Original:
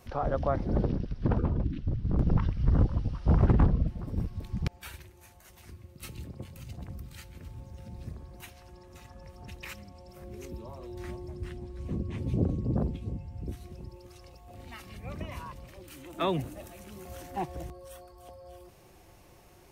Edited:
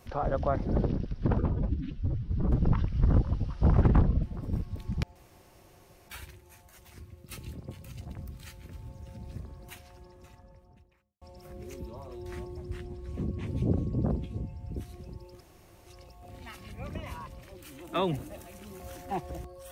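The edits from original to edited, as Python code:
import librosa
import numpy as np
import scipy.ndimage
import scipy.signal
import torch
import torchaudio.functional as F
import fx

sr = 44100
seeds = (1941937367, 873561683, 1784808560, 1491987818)

y = fx.studio_fade_out(x, sr, start_s=8.5, length_s=1.43)
y = fx.edit(y, sr, fx.stretch_span(start_s=1.53, length_s=0.71, factor=1.5),
    fx.insert_room_tone(at_s=4.8, length_s=0.93),
    fx.insert_room_tone(at_s=14.12, length_s=0.46), tone=tone)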